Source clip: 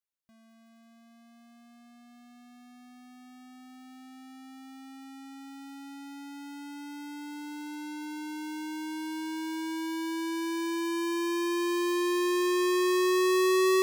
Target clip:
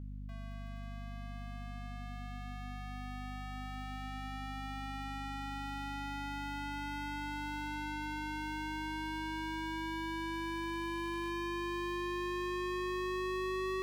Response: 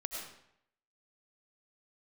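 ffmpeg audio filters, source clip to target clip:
-filter_complex "[0:a]acrossover=split=280[s0][s1];[s1]acompressor=threshold=0.00562:ratio=3[s2];[s0][s2]amix=inputs=2:normalize=0,acrossover=split=600 3700:gain=0.178 1 0.224[s3][s4][s5];[s3][s4][s5]amix=inputs=3:normalize=0,aeval=exprs='val(0)+0.00178*(sin(2*PI*50*n/s)+sin(2*PI*2*50*n/s)/2+sin(2*PI*3*50*n/s)/3+sin(2*PI*4*50*n/s)/4+sin(2*PI*5*50*n/s)/5)':c=same,asplit=3[s6][s7][s8];[s6]afade=t=out:st=9.94:d=0.02[s9];[s7]aeval=exprs='0.0119*(abs(mod(val(0)/0.0119+3,4)-2)-1)':c=same,afade=t=in:st=9.94:d=0.02,afade=t=out:st=11.29:d=0.02[s10];[s8]afade=t=in:st=11.29:d=0.02[s11];[s9][s10][s11]amix=inputs=3:normalize=0,acompressor=threshold=0.00251:ratio=2,volume=4.47"

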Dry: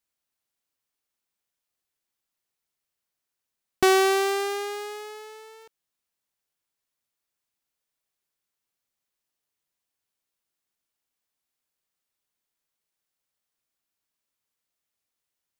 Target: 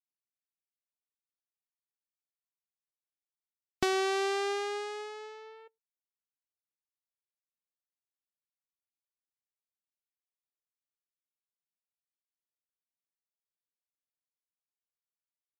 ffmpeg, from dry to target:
-filter_complex "[0:a]asplit=2[s0][s1];[s1]adelay=105,volume=0.0794,highshelf=f=4000:g=-2.36[s2];[s0][s2]amix=inputs=2:normalize=0,acrossover=split=2500|7400[s3][s4][s5];[s3]acompressor=threshold=0.0501:ratio=4[s6];[s4]acompressor=threshold=0.0251:ratio=4[s7];[s5]acompressor=threshold=0.00316:ratio=4[s8];[s6][s7][s8]amix=inputs=3:normalize=0,afftdn=nr=28:nf=-50,volume=0.75"

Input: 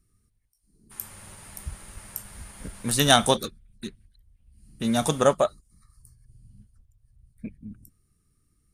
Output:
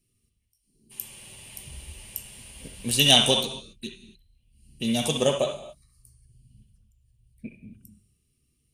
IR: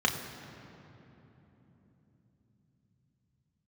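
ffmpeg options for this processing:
-filter_complex "[0:a]highshelf=f=2100:t=q:w=3:g=9.5,asplit=2[s0][s1];[1:a]atrim=start_sample=2205,atrim=end_sample=6174,asetrate=22050,aresample=44100[s2];[s1][s2]afir=irnorm=-1:irlink=0,volume=0.224[s3];[s0][s3]amix=inputs=2:normalize=0,volume=0.376"

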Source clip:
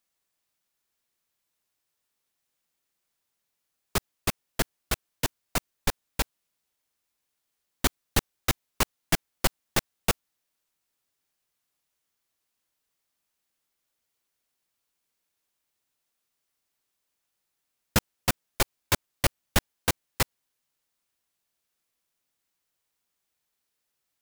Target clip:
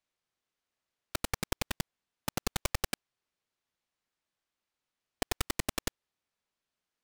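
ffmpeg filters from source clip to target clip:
-af "aeval=exprs='(tanh(22.4*val(0)+0.45)-tanh(0.45))/22.4':c=same,adynamicsmooth=sensitivity=7:basefreq=1800,asetrate=151704,aresample=44100,volume=1.68"

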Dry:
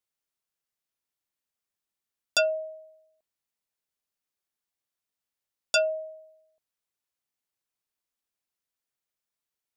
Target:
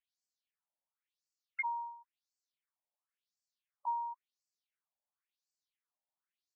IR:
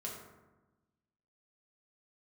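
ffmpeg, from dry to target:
-filter_complex "[0:a]acrossover=split=1500[s0][s1];[s0]acompressor=threshold=0.0158:ratio=6[s2];[s2][s1]amix=inputs=2:normalize=0,asetrate=65709,aresample=44100,asoftclip=type=hard:threshold=0.0562,afftfilt=real='re*between(b*sr/1024,690*pow(6100/690,0.5+0.5*sin(2*PI*0.95*pts/sr))/1.41,690*pow(6100/690,0.5+0.5*sin(2*PI*0.95*pts/sr))*1.41)':imag='im*between(b*sr/1024,690*pow(6100/690,0.5+0.5*sin(2*PI*0.95*pts/sr))/1.41,690*pow(6100/690,0.5+0.5*sin(2*PI*0.95*pts/sr))*1.41)':win_size=1024:overlap=0.75,volume=1.41"

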